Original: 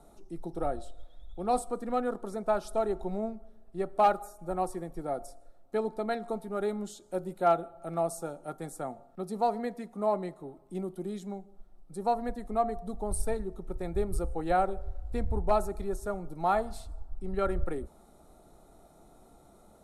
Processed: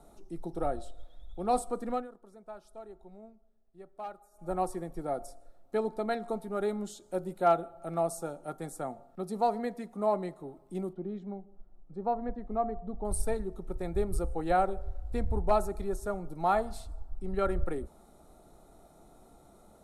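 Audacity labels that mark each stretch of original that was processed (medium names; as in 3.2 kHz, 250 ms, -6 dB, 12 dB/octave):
1.900000	4.490000	dip -17.5 dB, fades 0.18 s
10.930000	13.050000	tape spacing loss at 10 kHz 38 dB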